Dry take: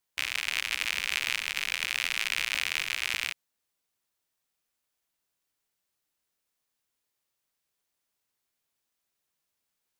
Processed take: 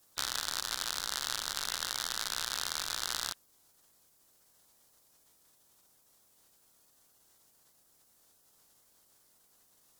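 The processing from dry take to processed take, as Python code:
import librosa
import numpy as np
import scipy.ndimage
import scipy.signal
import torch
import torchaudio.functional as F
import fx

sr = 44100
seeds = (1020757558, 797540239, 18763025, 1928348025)

y = fx.bin_compress(x, sr, power=0.6)
y = fx.rider(y, sr, range_db=10, speed_s=0.5)
y = fx.spec_gate(y, sr, threshold_db=-10, keep='weak')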